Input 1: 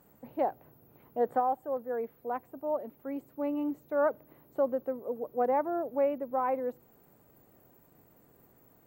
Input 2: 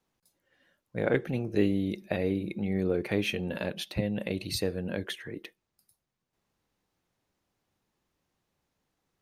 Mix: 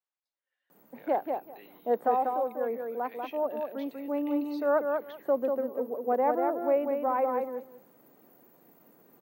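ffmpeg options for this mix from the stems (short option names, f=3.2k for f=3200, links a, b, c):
-filter_complex "[0:a]bandreject=f=7.6k:w=7.1,adelay=700,volume=1.5dB,asplit=2[a][b];[b]volume=-4.5dB[c];[1:a]acrossover=split=590 4900:gain=0.0794 1 0.0631[d][e][f];[d][e][f]amix=inputs=3:normalize=0,volume=-16dB[g];[c]aecho=0:1:192|384|576:1|0.16|0.0256[h];[a][g][h]amix=inputs=3:normalize=0,highpass=f=180:w=0.5412,highpass=f=180:w=1.3066"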